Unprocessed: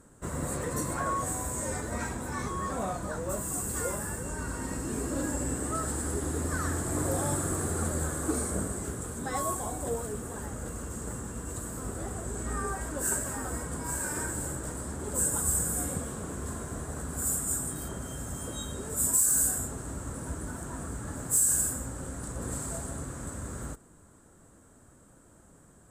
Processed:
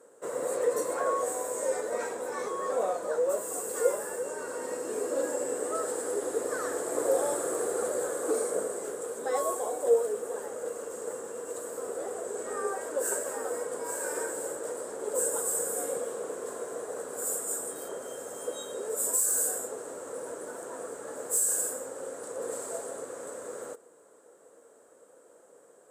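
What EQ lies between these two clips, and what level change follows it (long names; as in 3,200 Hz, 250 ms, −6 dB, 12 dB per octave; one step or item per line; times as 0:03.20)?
high-pass with resonance 480 Hz, resonance Q 5.5
−2.5 dB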